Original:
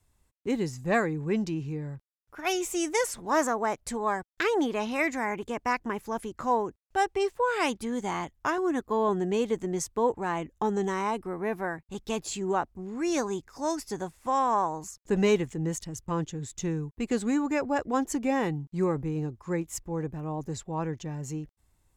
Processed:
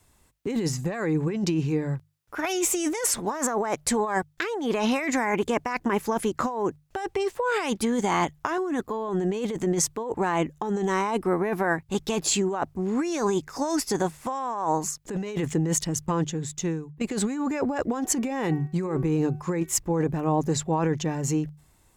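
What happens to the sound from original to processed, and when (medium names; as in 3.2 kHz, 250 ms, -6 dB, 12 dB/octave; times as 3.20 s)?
7.11–7.52 s: compression 2:1, threshold -30 dBFS
15.92–17.01 s: fade out, to -16.5 dB
17.93–19.75 s: de-hum 376.3 Hz, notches 7
whole clip: bass shelf 72 Hz -9.5 dB; hum notches 50/100/150 Hz; compressor with a negative ratio -33 dBFS, ratio -1; trim +7.5 dB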